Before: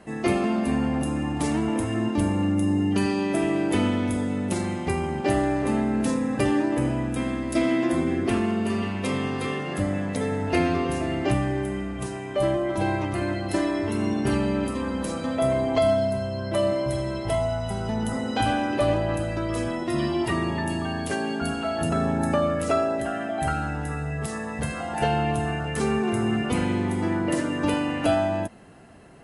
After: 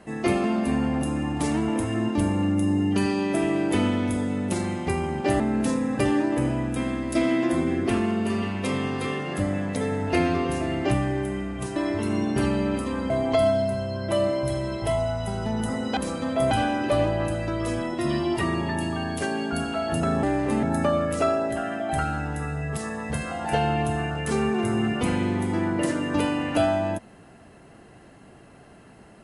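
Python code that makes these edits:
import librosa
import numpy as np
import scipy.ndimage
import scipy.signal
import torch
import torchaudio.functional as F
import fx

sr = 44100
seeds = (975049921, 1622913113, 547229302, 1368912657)

y = fx.edit(x, sr, fx.move(start_s=5.4, length_s=0.4, to_s=22.12),
    fx.cut(start_s=12.16, length_s=1.49),
    fx.move(start_s=14.99, length_s=0.54, to_s=18.4), tone=tone)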